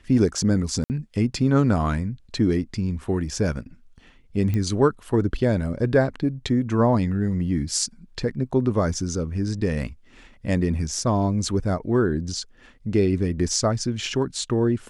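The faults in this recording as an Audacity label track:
0.840000	0.900000	drop-out 59 ms
4.540000	4.540000	click −15 dBFS

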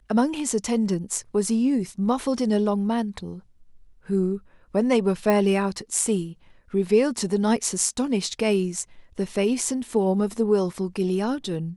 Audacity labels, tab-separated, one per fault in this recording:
5.300000	5.300000	click −10 dBFS

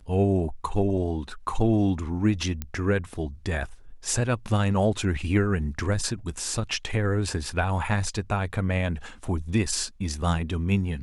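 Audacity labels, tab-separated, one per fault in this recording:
2.620000	2.620000	click −16 dBFS

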